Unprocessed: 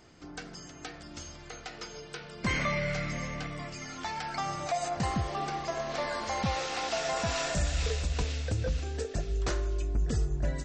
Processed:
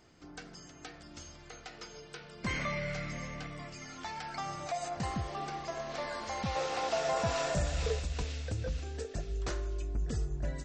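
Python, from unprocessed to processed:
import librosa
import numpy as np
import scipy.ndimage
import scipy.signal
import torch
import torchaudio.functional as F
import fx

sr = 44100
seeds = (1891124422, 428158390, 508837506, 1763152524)

y = fx.graphic_eq(x, sr, hz=(125, 500, 1000), db=(6, 7, 4), at=(6.55, 8.0))
y = y * 10.0 ** (-5.0 / 20.0)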